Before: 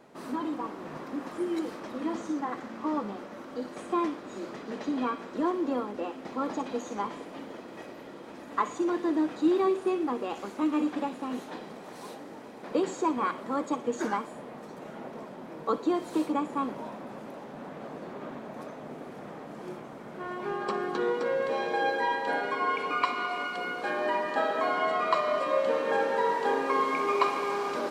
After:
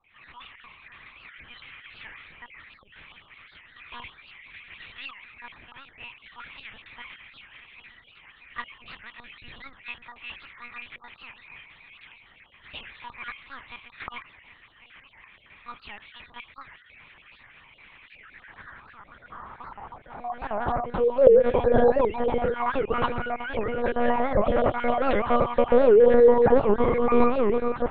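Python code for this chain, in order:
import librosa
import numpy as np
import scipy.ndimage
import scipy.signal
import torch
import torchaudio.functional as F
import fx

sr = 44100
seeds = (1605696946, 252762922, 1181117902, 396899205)

p1 = fx.spec_dropout(x, sr, seeds[0], share_pct=34)
p2 = fx.low_shelf(p1, sr, hz=400.0, db=9.0)
p3 = fx.hum_notches(p2, sr, base_hz=60, count=6)
p4 = fx.vibrato(p3, sr, rate_hz=0.66, depth_cents=19.0)
p5 = fx.filter_sweep_highpass(p4, sr, from_hz=2300.0, to_hz=460.0, start_s=17.97, end_s=21.43, q=3.9)
p6 = p5 + fx.echo_bbd(p5, sr, ms=124, stages=1024, feedback_pct=34, wet_db=-23, dry=0)
p7 = fx.lpc_monotone(p6, sr, seeds[1], pitch_hz=240.0, order=8)
y = fx.record_warp(p7, sr, rpm=78.0, depth_cents=250.0)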